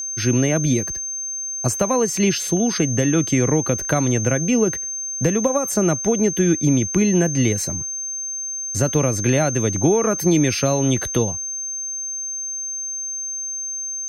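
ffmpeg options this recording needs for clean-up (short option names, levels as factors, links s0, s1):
-af "bandreject=f=6300:w=30"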